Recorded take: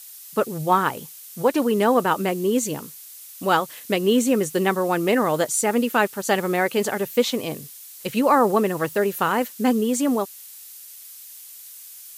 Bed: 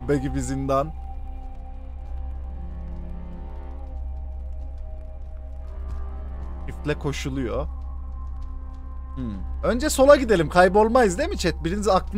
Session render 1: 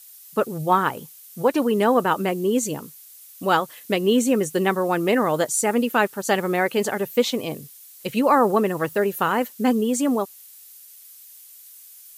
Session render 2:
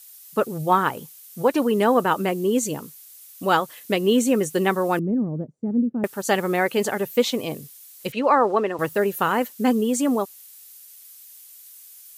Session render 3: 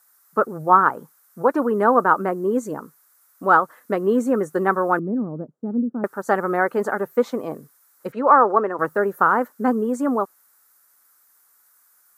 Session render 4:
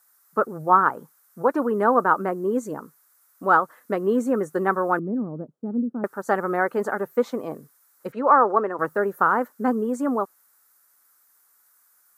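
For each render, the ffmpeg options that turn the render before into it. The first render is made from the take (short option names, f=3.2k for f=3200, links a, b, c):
-af "afftdn=nr=6:nf=-42"
-filter_complex "[0:a]asettb=1/sr,asplit=3[a][b][c];[a]atrim=end=4.994[d];[b]atrim=start=4.99:end=6.04,asetpts=PTS-STARTPTS,afade=t=in:d=0.004:c=qsin,afade=t=out:st=1.046:d=0.004:c=qsin,lowpass=f=210:t=q:w=1.6[e];[c]atrim=start=6.036[f];[d][e]acrossfade=d=0.004:c1=hsin:c2=qsin[g];[g][f]acrossfade=d=0.004:c1=qsin:c2=hsin,asettb=1/sr,asplit=3[h][i][j];[h]atrim=end=8.124[k];[i]atrim=start=8.12:end=8.79,asetpts=PTS-STARTPTS,afade=t=in:d=0.004:c=qsin,afade=t=out:st=0.666:d=0.004:c=qsin,highpass=320,lowpass=4.4k[l];[j]atrim=start=8.786[m];[k][l]acrossfade=d=0.004:c1=hsin:c2=qsin[n];[n][m]acrossfade=d=0.004:c1=qsin:c2=hsin"
-af "highpass=190,highshelf=f=2k:t=q:w=3:g=-13"
-af "volume=-2.5dB"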